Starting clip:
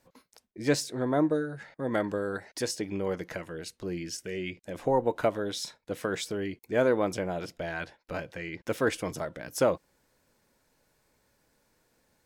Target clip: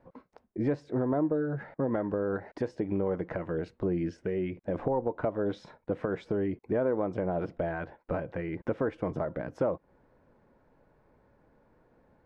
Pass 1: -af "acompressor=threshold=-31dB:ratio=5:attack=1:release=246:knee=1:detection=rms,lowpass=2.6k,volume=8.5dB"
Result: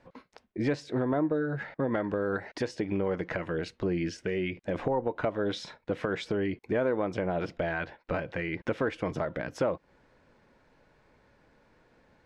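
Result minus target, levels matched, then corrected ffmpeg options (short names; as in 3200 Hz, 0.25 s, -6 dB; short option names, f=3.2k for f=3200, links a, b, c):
2000 Hz band +7.0 dB
-af "acompressor=threshold=-31dB:ratio=5:attack=1:release=246:knee=1:detection=rms,lowpass=1.1k,volume=8.5dB"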